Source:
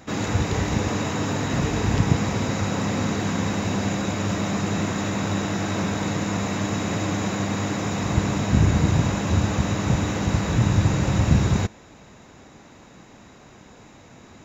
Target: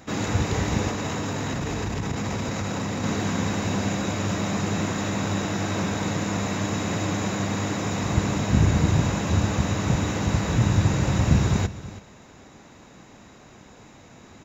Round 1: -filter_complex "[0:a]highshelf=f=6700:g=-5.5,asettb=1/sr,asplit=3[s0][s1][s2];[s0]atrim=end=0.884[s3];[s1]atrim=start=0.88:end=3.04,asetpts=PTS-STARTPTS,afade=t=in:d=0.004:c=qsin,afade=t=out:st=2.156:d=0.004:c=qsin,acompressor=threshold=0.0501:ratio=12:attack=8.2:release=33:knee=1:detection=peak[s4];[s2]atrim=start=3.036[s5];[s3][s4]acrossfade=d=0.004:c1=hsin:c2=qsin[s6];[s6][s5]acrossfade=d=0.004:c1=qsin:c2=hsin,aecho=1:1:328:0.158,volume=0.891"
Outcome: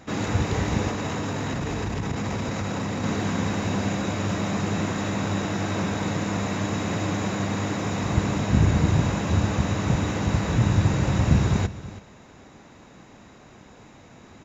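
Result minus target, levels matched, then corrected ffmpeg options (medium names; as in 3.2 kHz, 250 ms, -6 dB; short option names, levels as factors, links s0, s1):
8 kHz band -3.5 dB
-filter_complex "[0:a]highshelf=f=6700:g=2,asettb=1/sr,asplit=3[s0][s1][s2];[s0]atrim=end=0.884[s3];[s1]atrim=start=0.88:end=3.04,asetpts=PTS-STARTPTS,afade=t=in:d=0.004:c=qsin,afade=t=out:st=2.156:d=0.004:c=qsin,acompressor=threshold=0.0501:ratio=12:attack=8.2:release=33:knee=1:detection=peak[s4];[s2]atrim=start=3.036[s5];[s3][s4]acrossfade=d=0.004:c1=hsin:c2=qsin[s6];[s6][s5]acrossfade=d=0.004:c1=qsin:c2=hsin,aecho=1:1:328:0.158,volume=0.891"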